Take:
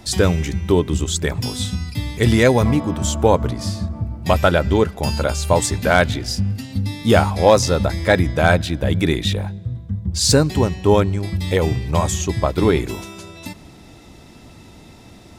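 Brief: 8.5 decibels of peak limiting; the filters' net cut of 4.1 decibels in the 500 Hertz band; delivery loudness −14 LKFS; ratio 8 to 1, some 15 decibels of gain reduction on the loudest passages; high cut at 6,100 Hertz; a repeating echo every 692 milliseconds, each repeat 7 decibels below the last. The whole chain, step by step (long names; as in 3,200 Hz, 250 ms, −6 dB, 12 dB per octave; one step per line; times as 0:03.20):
low-pass filter 6,100 Hz
parametric band 500 Hz −5 dB
downward compressor 8 to 1, threshold −27 dBFS
brickwall limiter −23 dBFS
repeating echo 692 ms, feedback 45%, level −7 dB
level +19 dB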